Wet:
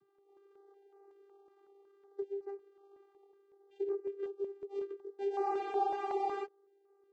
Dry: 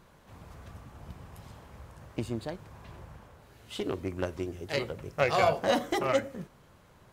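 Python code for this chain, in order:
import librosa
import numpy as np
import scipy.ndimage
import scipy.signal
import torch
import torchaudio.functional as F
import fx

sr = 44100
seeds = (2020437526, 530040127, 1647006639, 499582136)

y = scipy.ndimage.median_filter(x, 25, mode='constant')
y = fx.low_shelf(y, sr, hz=270.0, db=9.5)
y = fx.vocoder(y, sr, bands=16, carrier='saw', carrier_hz=397.0)
y = fx.spec_freeze(y, sr, seeds[0], at_s=5.46, hold_s=0.98)
y = fx.filter_held_notch(y, sr, hz=5.4, low_hz=550.0, high_hz=3300.0)
y = F.gain(torch.from_numpy(y), -7.5).numpy()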